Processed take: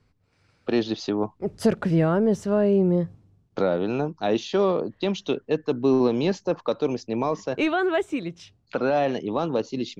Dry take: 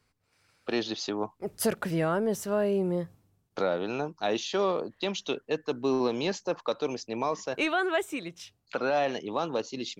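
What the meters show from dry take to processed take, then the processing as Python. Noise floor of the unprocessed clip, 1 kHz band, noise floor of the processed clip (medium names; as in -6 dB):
-73 dBFS, +2.5 dB, -66 dBFS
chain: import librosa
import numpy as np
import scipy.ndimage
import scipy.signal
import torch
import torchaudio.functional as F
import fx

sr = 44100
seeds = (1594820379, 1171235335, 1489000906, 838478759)

y = scipy.signal.sosfilt(scipy.signal.butter(2, 6200.0, 'lowpass', fs=sr, output='sos'), x)
y = fx.low_shelf(y, sr, hz=480.0, db=11.0)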